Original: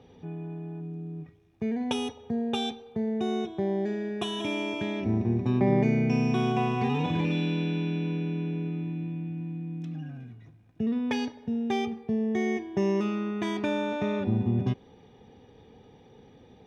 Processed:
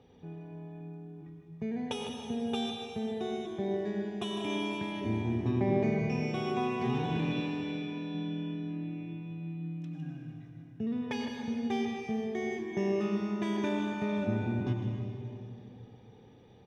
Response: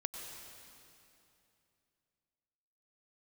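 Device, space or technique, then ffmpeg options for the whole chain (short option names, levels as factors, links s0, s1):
cave: -filter_complex "[0:a]aecho=1:1:156:0.335[s0];[1:a]atrim=start_sample=2205[s1];[s0][s1]afir=irnorm=-1:irlink=0,asettb=1/sr,asplit=3[s2][s3][s4];[s2]atrim=end=7.404[s5];[s3]atrim=start=7.4:end=8.15,asetpts=PTS-STARTPTS,afade=t=in:d=0.004:c=qsin,afade=t=out:st=0.746:d=0.004:c=qsin,equalizer=f=150:t=o:w=1.6:g=-5.5[s6];[s4]atrim=start=8.146[s7];[s5][s6]acrossfade=d=0.004:c1=hsin:c2=qsin[s8];[s8][s7]acrossfade=d=0.004:c1=qsin:c2=hsin,volume=0.631"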